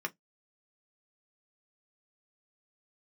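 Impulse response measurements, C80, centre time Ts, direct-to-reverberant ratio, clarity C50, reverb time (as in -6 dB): 45.0 dB, 4 ms, 3.5 dB, 30.0 dB, 0.15 s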